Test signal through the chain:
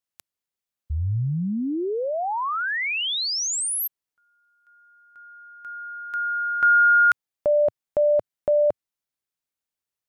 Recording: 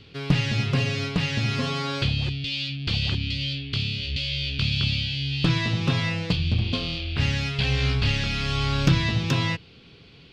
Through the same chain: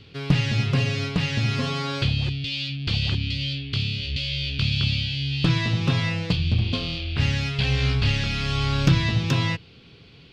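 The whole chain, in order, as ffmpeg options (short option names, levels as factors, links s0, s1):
-af "equalizer=f=110:w=1.6:g=2.5"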